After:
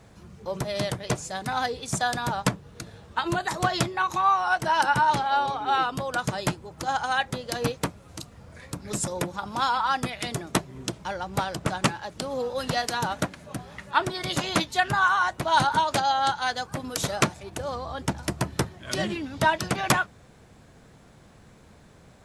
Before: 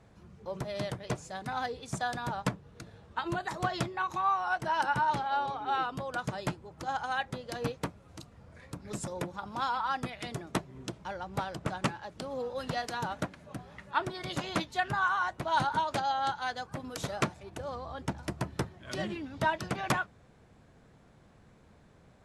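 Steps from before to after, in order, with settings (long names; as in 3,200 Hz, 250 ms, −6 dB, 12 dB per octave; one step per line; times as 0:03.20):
high-shelf EQ 4,100 Hz +8 dB
level +6.5 dB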